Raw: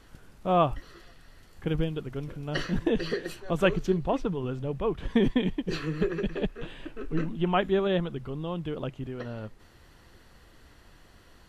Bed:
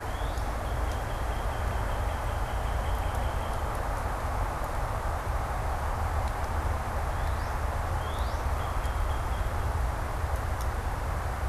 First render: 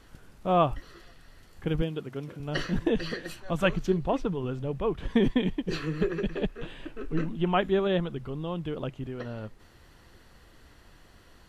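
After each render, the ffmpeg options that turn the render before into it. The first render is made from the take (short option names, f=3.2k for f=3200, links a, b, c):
-filter_complex "[0:a]asettb=1/sr,asplit=3[a][b][c];[a]atrim=end=1.824[d];[b]atrim=start=1.82:end=2.4,asetpts=PTS-STARTPTS,afade=t=in:d=0.004:c=qsin,afade=t=out:st=0.576:d=0.004:c=qsin,highpass=140[e];[c]atrim=start=2.396[f];[d][e]acrossfade=d=0.004:c1=hsin:c2=qsin[g];[g][f]acrossfade=d=0.004:c1=qsin:c2=hsin,asettb=1/sr,asplit=3[h][i][j];[h]atrim=end=2.954[k];[i]atrim=start=2.95:end=3.87,asetpts=PTS-STARTPTS,afade=t=in:d=0.004:c=qsin,afade=t=out:st=0.916:d=0.004:c=qsin,equalizer=f=410:w=4.1:g=-11.5[l];[j]atrim=start=3.866[m];[k][l]acrossfade=d=0.004:c1=hsin:c2=qsin[n];[n][m]acrossfade=d=0.004:c1=qsin:c2=hsin"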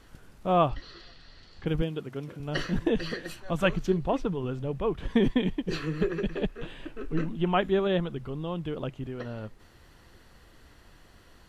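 -filter_complex "[0:a]asettb=1/sr,asplit=3[a][b][c];[a]atrim=end=0.694[d];[b]atrim=start=0.69:end=1.66,asetpts=PTS-STARTPTS,afade=t=in:d=0.004:c=qsin,afade=t=out:st=0.966:d=0.004:c=qsin,lowpass=f=4.4k:t=q:w=3.3[e];[c]atrim=start=1.656[f];[d][e]acrossfade=d=0.004:c1=hsin:c2=qsin[g];[g][f]acrossfade=d=0.004:c1=qsin:c2=hsin"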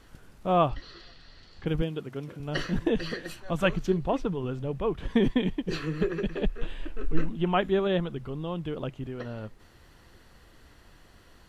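-filter_complex "[0:a]asplit=3[a][b][c];[a]afade=t=out:st=6.45:d=0.02[d];[b]asubboost=boost=4:cutoff=63,afade=t=in:st=6.45:d=0.02,afade=t=out:st=7.28:d=0.02[e];[c]afade=t=in:st=7.28:d=0.02[f];[d][e][f]amix=inputs=3:normalize=0"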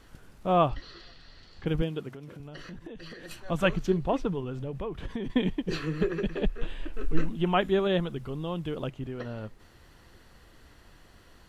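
-filter_complex "[0:a]asettb=1/sr,asplit=3[a][b][c];[a]atrim=end=2.094[d];[b]atrim=start=2.09:end=3.31,asetpts=PTS-STARTPTS,afade=t=in:d=0.004:c=qsin,afade=t=out:st=1.216:d=0.004:c=qsin,acompressor=threshold=-39dB:ratio=10:attack=3.2:release=140:knee=1:detection=peak[e];[c]atrim=start=3.306[f];[d][e]acrossfade=d=0.004:c1=hsin:c2=qsin[g];[g][f]acrossfade=d=0.004:c1=qsin:c2=hsin,asettb=1/sr,asplit=3[h][i][j];[h]atrim=end=4.404[k];[i]atrim=start=4.4:end=5.3,asetpts=PTS-STARTPTS,afade=t=in:d=0.004:c=qsin,afade=t=out:st=0.896:d=0.004:c=qsin,acompressor=threshold=-30dB:ratio=6:attack=3.2:release=140:knee=1:detection=peak[l];[j]atrim=start=5.296[m];[k][l]acrossfade=d=0.004:c1=hsin:c2=qsin[n];[n][m]acrossfade=d=0.004:c1=qsin:c2=hsin,asettb=1/sr,asplit=3[o][p][q];[o]atrim=end=6.934[r];[p]atrim=start=6.93:end=8.9,asetpts=PTS-STARTPTS,afade=t=in:d=0.004:c=qsin,afade=t=out:st=1.966:d=0.004:c=qsin,highshelf=f=5.1k:g=7[s];[q]atrim=start=8.896[t];[r][s]acrossfade=d=0.004:c1=hsin:c2=qsin[u];[u][t]acrossfade=d=0.004:c1=qsin:c2=hsin"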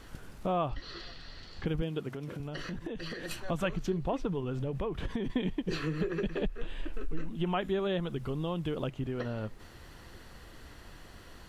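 -filter_complex "[0:a]asplit=2[a][b];[b]alimiter=limit=-21.5dB:level=0:latency=1,volume=-3dB[c];[a][c]amix=inputs=2:normalize=0,acompressor=threshold=-32dB:ratio=2.5"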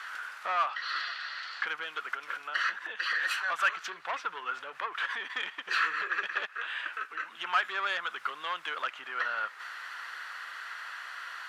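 -filter_complex "[0:a]asplit=2[a][b];[b]highpass=f=720:p=1,volume=18dB,asoftclip=type=tanh:threshold=-18.5dB[c];[a][c]amix=inputs=2:normalize=0,lowpass=f=2.4k:p=1,volume=-6dB,highpass=f=1.4k:t=q:w=2.8"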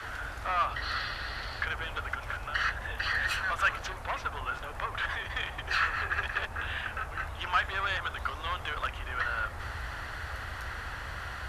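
-filter_complex "[1:a]volume=-11dB[a];[0:a][a]amix=inputs=2:normalize=0"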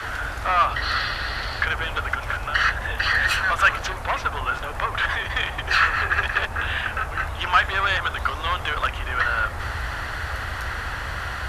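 -af "volume=9.5dB"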